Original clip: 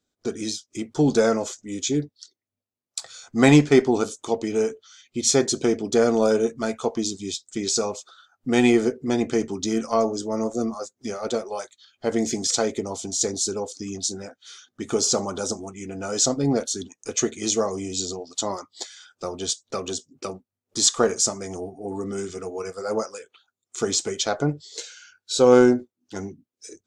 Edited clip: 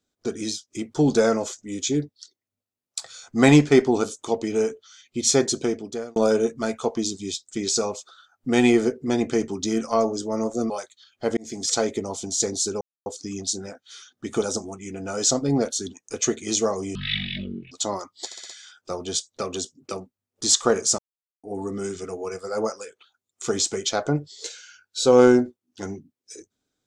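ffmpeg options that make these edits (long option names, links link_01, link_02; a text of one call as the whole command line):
ffmpeg -i in.wav -filter_complex "[0:a]asplit=14[link_01][link_02][link_03][link_04][link_05][link_06][link_07][link_08][link_09][link_10][link_11][link_12][link_13][link_14];[link_01]atrim=end=6.16,asetpts=PTS-STARTPTS,afade=type=out:start_time=5.47:duration=0.69[link_15];[link_02]atrim=start=6.16:end=10.702,asetpts=PTS-STARTPTS,afade=type=in:duration=0.004:curve=hsin[link_16];[link_03]atrim=start=11.508:end=12.18,asetpts=PTS-STARTPTS,afade=type=out:start_time=0.668:duration=0.004:curve=hsin[link_17];[link_04]atrim=start=12.18:end=13.62,asetpts=PTS-STARTPTS,afade=type=in:duration=0.37,afade=type=out:start_time=1.436:duration=0.004:curve=hsin,apad=pad_dur=0.25[link_18];[link_05]atrim=start=13.62:end=14.982,asetpts=PTS-STARTPTS,afade=type=in:duration=0.004:curve=hsin[link_19];[link_06]atrim=start=15.368:end=17.904[link_20];[link_07]atrim=start=17.9:end=18.29,asetpts=PTS-STARTPTS,asetrate=22491,aresample=44100[link_21];[link_08]atrim=start=18.286:end=18.892[link_22];[link_09]atrim=start=18.828:end=18.892[link_23];[link_10]atrim=start=18.828:end=18.892[link_24];[link_11]atrim=start=18.828:end=18.892[link_25];[link_12]atrim=start=18.828:end=21.32,asetpts=PTS-STARTPTS,afade=type=out:start_time=2.488:duration=0.004:curve=hsin[link_26];[link_13]atrim=start=21.32:end=21.77,asetpts=PTS-STARTPTS,volume=0[link_27];[link_14]atrim=start=21.77,asetpts=PTS-STARTPTS,afade=type=in:duration=0.004:curve=hsin[link_28];[link_15][link_16]concat=n=2:v=0:a=1[link_29];[link_17][link_18][link_19]concat=n=3:v=0:a=1[link_30];[link_29][link_30]acrossfade=duration=0.004:curve1=hsin:curve2=hsin[link_31];[link_31][link_20]acrossfade=duration=0.004:curve1=hsin:curve2=hsin[link_32];[link_32][link_21]acrossfade=duration=0.004:curve1=hsin:curve2=hsin[link_33];[link_33][link_22]acrossfade=duration=0.004:curve1=hsin:curve2=hsin[link_34];[link_34][link_23]acrossfade=duration=0.004:curve1=hsin:curve2=hsin[link_35];[link_35][link_24]acrossfade=duration=0.004:curve1=hsin:curve2=hsin[link_36];[link_36][link_25]acrossfade=duration=0.004:curve1=hsin:curve2=hsin[link_37];[link_26][link_27][link_28]concat=n=3:v=0:a=1[link_38];[link_37][link_38]acrossfade=duration=0.004:curve1=hsin:curve2=hsin" out.wav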